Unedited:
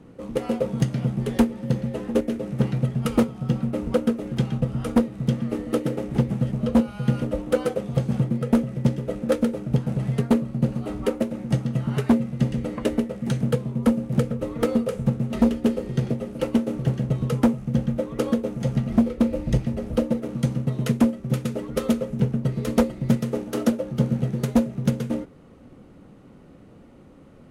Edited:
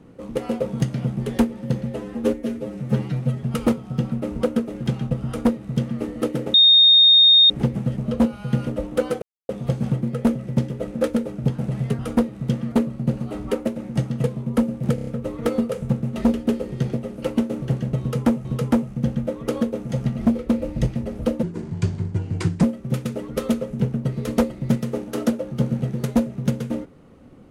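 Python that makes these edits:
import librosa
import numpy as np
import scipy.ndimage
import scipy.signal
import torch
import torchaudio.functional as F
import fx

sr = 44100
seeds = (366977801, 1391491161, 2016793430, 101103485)

y = fx.edit(x, sr, fx.stretch_span(start_s=1.96, length_s=0.98, factor=1.5),
    fx.duplicate(start_s=4.78, length_s=0.73, to_s=10.27),
    fx.insert_tone(at_s=6.05, length_s=0.96, hz=3690.0, db=-9.0),
    fx.insert_silence(at_s=7.77, length_s=0.27),
    fx.cut(start_s=11.79, length_s=1.74),
    fx.stutter(start_s=14.24, slice_s=0.03, count=5),
    fx.repeat(start_s=17.16, length_s=0.46, count=2),
    fx.speed_span(start_s=20.14, length_s=0.89, speed=0.74), tone=tone)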